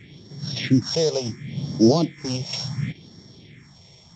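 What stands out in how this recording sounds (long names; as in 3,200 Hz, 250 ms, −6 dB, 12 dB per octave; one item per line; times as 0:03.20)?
a buzz of ramps at a fixed pitch in blocks of 8 samples
phaser sweep stages 4, 0.7 Hz, lowest notch 260–2,500 Hz
mu-law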